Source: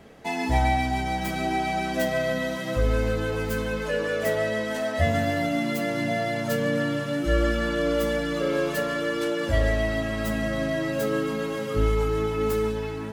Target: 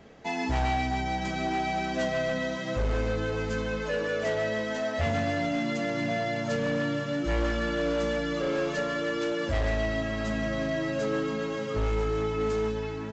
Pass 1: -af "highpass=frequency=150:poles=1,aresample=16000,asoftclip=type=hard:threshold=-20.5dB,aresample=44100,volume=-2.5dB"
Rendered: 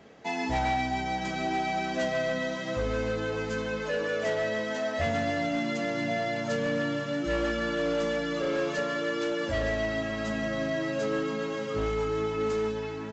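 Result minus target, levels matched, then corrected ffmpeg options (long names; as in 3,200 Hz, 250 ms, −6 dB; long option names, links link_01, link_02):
125 Hz band −4.0 dB
-af "aresample=16000,asoftclip=type=hard:threshold=-20.5dB,aresample=44100,volume=-2.5dB"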